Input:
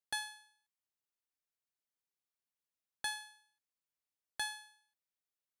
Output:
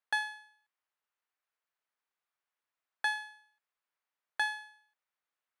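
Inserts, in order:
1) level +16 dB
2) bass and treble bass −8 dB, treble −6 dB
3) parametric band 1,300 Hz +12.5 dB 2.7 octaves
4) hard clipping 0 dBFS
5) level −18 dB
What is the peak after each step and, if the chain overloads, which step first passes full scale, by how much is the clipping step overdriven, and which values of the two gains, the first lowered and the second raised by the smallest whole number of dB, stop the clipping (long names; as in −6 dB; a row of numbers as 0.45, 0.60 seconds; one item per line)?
−7.0, −10.0, −2.0, −2.0, −20.0 dBFS
no step passes full scale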